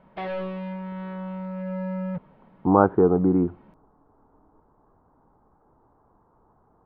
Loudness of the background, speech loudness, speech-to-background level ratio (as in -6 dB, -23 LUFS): -32.5 LUFS, -21.0 LUFS, 11.5 dB